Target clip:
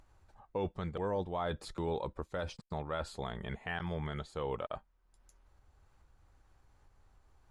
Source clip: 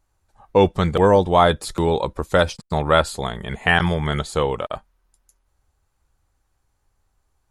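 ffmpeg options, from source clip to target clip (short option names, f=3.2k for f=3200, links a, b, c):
-af "aemphasis=mode=reproduction:type=50fm,areverse,acompressor=threshold=-23dB:ratio=6,areverse,alimiter=limit=-20.5dB:level=0:latency=1:release=474,acompressor=mode=upward:threshold=-49dB:ratio=2.5,volume=-5dB"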